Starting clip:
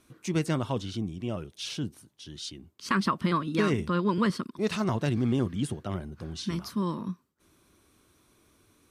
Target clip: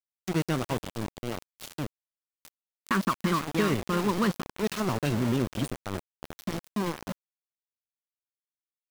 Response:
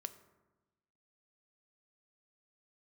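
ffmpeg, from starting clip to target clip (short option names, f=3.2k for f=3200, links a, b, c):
-af "aecho=1:1:335:0.224,aeval=exprs='val(0)*gte(abs(val(0)),0.0376)':c=same"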